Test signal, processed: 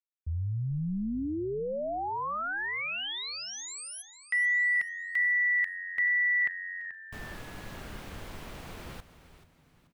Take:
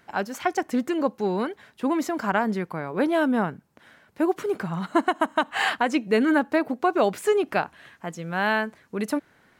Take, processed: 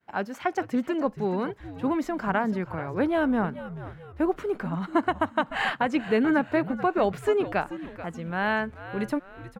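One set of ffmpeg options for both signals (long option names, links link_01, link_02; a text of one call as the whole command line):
ffmpeg -i in.wav -filter_complex "[0:a]agate=range=-33dB:threshold=-53dB:ratio=3:detection=peak,bass=frequency=250:gain=2,treble=frequency=4000:gain=-9,asplit=2[link_01][link_02];[link_02]asplit=4[link_03][link_04][link_05][link_06];[link_03]adelay=434,afreqshift=-91,volume=-13.5dB[link_07];[link_04]adelay=868,afreqshift=-182,volume=-21.2dB[link_08];[link_05]adelay=1302,afreqshift=-273,volume=-29dB[link_09];[link_06]adelay=1736,afreqshift=-364,volume=-36.7dB[link_10];[link_07][link_08][link_09][link_10]amix=inputs=4:normalize=0[link_11];[link_01][link_11]amix=inputs=2:normalize=0,volume=-2.5dB" out.wav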